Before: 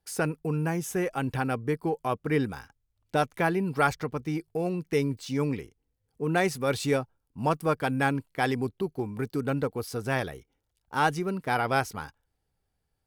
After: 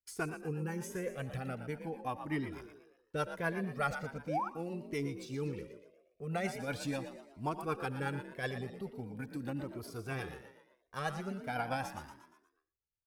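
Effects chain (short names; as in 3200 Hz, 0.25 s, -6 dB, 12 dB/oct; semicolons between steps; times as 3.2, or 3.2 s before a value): gate -51 dBFS, range -15 dB; frequency-shifting echo 0.117 s, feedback 46%, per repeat +48 Hz, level -10 dB; rotary speaker horn 8 Hz; painted sound rise, 4.28–4.49, 460–1500 Hz -27 dBFS; on a send at -17 dB: reverb RT60 0.30 s, pre-delay 70 ms; on the sum: cascading flanger rising 0.41 Hz; gain -3.5 dB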